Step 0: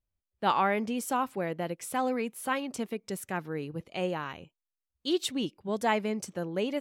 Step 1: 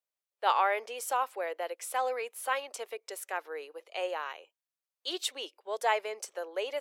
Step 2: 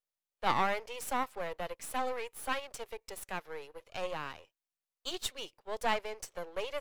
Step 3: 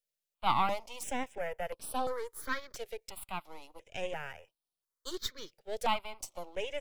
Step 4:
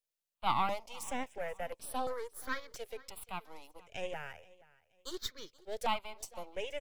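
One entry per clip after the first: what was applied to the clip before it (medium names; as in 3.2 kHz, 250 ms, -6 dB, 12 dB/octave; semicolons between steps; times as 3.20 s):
steep high-pass 450 Hz 36 dB/octave
partial rectifier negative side -12 dB
stepped phaser 2.9 Hz 280–6900 Hz; trim +2.5 dB
feedback delay 477 ms, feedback 32%, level -22 dB; trim -2.5 dB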